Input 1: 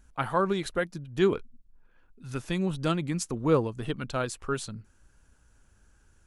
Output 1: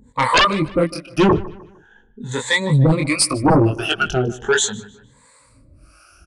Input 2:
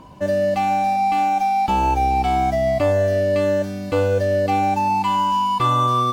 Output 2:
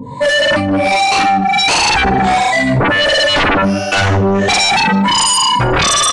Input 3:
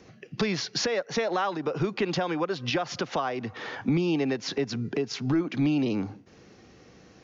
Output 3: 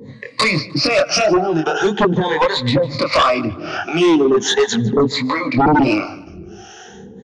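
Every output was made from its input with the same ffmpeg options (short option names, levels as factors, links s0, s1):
-filter_complex "[0:a]afftfilt=real='re*pow(10,20/40*sin(2*PI*(1*log(max(b,1)*sr/1024/100)/log(2)-(0.4)*(pts-256)/sr)))':imag='im*pow(10,20/40*sin(2*PI*(1*log(max(b,1)*sr/1024/100)/log(2)-(0.4)*(pts-256)/sr)))':win_size=1024:overlap=0.75,highpass=f=53:p=1,flanger=delay=19:depth=6.9:speed=1.5,acrossover=split=500[s0][s1];[s0]aeval=exprs='val(0)*(1-1/2+1/2*cos(2*PI*1.4*n/s))':c=same[s2];[s1]aeval=exprs='val(0)*(1-1/2-1/2*cos(2*PI*1.4*n/s))':c=same[s3];[s2][s3]amix=inputs=2:normalize=0,aeval=exprs='0.355*sin(PI/2*6.31*val(0)/0.355)':c=same,asplit=2[s4][s5];[s5]adelay=152,lowpass=f=4500:p=1,volume=0.119,asplit=2[s6][s7];[s7]adelay=152,lowpass=f=4500:p=1,volume=0.4,asplit=2[s8][s9];[s9]adelay=152,lowpass=f=4500:p=1,volume=0.4[s10];[s6][s8][s10]amix=inputs=3:normalize=0[s11];[s4][s11]amix=inputs=2:normalize=0,aresample=22050,aresample=44100"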